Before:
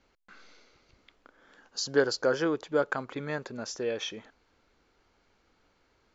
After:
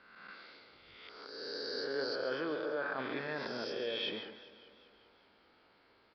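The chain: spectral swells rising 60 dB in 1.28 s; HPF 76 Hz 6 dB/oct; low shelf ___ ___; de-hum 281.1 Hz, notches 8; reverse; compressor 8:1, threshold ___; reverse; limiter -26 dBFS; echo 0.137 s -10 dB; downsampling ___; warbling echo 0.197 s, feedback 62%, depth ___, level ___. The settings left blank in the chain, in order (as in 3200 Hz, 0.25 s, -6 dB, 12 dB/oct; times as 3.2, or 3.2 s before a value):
140 Hz, -9.5 dB, -34 dBFS, 11025 Hz, 69 cents, -17 dB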